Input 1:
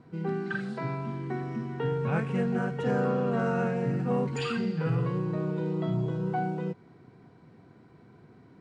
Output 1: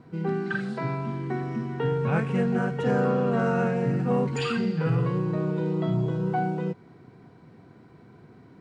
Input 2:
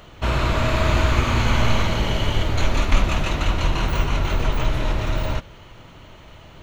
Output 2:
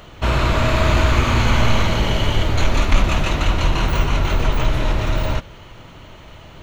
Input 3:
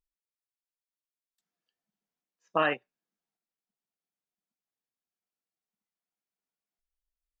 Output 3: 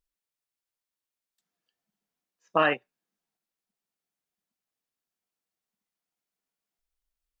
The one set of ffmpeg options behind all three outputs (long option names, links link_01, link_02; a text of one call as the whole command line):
ffmpeg -i in.wav -af "asoftclip=type=tanh:threshold=-5.5dB,volume=3.5dB" out.wav